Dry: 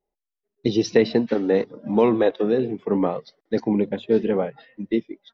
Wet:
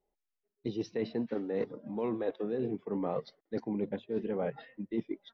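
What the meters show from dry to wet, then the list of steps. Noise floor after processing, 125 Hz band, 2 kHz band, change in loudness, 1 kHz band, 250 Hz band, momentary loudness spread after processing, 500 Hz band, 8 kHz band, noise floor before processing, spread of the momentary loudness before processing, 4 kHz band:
below −85 dBFS, −11.5 dB, −15.5 dB, −13.5 dB, −13.0 dB, −13.0 dB, 5 LU, −13.5 dB, can't be measured, below −85 dBFS, 8 LU, −16.5 dB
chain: low-pass filter 2,600 Hz 6 dB per octave
reversed playback
downward compressor 12 to 1, threshold −30 dBFS, peak gain reduction 19.5 dB
reversed playback

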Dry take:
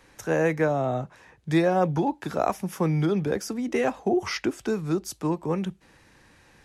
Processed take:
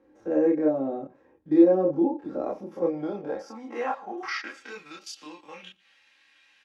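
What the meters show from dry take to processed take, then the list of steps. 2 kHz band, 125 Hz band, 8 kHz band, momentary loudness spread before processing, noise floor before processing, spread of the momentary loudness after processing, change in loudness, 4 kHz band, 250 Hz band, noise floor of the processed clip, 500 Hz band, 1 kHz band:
−5.5 dB, −16.0 dB, below −10 dB, 7 LU, −58 dBFS, 23 LU, +0.5 dB, −5.0 dB, +1.0 dB, −63 dBFS, −0.5 dB, −6.0 dB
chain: spectrum averaged block by block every 50 ms
dynamic equaliser 4,800 Hz, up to +8 dB, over −55 dBFS, Q 1.5
comb filter 3.7 ms, depth 59%
band-pass filter sweep 350 Hz → 2,900 Hz, 0:02.39–0:05.12
multi-voice chorus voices 6, 0.49 Hz, delay 28 ms, depth 1.8 ms
on a send: single-tap delay 117 ms −23.5 dB
on the sum: level +8 dB

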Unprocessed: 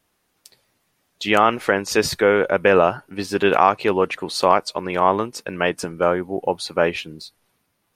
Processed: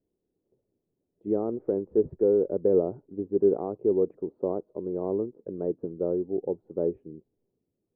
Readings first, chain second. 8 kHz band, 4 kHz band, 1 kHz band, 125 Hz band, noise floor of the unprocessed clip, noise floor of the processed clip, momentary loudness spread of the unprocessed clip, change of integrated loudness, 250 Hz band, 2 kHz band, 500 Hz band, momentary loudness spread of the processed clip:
below −40 dB, below −40 dB, −25.0 dB, −8.5 dB, −70 dBFS, −82 dBFS, 10 LU, −8.5 dB, −4.5 dB, below −40 dB, −6.0 dB, 10 LU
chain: transistor ladder low-pass 470 Hz, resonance 50%

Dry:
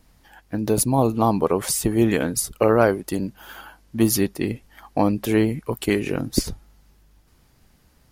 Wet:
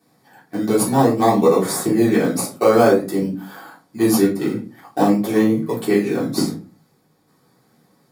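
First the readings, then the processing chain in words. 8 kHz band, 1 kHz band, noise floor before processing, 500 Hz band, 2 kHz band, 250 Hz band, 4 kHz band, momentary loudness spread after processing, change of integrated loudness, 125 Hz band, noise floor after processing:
−1.0 dB, +4.5 dB, −58 dBFS, +5.0 dB, +2.0 dB, +4.5 dB, +1.0 dB, 12 LU, +4.0 dB, 0.0 dB, −60 dBFS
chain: in parallel at −6.5 dB: sample-and-hold swept by an LFO 20×, swing 60% 0.5 Hz
on the sum: high-pass filter 160 Hz 24 dB per octave
parametric band 2,800 Hz −13 dB 0.21 octaves
notch filter 6,100 Hz, Q 14
rectangular room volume 150 cubic metres, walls furnished, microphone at 3.5 metres
level −7 dB

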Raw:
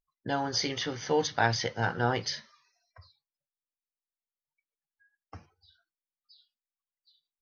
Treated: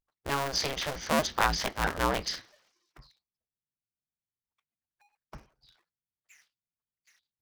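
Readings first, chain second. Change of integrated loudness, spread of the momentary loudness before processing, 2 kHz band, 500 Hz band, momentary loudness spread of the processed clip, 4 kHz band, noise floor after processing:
+0.5 dB, 7 LU, 0.0 dB, −2.0 dB, 7 LU, +0.5 dB, below −85 dBFS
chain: sub-harmonics by changed cycles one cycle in 2, inverted

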